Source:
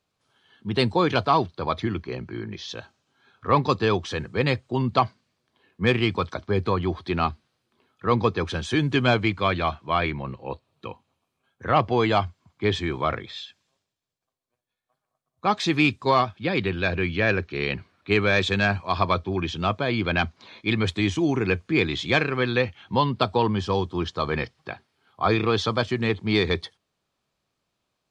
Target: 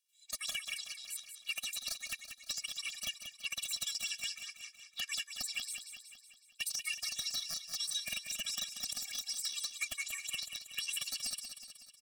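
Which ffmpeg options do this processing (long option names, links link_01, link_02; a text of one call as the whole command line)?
ffmpeg -i in.wav -af "highpass=frequency=1200:width=0.5412,highpass=frequency=1200:width=1.3066,acompressor=threshold=-30dB:ratio=10,aeval=exprs='(mod(11.2*val(0)+1,2)-1)/11.2':channel_layout=same,aecho=1:1:434|868|1302|1736|2170|2604|3038:0.376|0.21|0.118|0.066|0.037|0.0207|0.0116,asetrate=103194,aresample=44100,afftfilt=real='re*eq(mod(floor(b*sr/1024/270),2),0)':imag='im*eq(mod(floor(b*sr/1024/270),2),0)':win_size=1024:overlap=0.75" out.wav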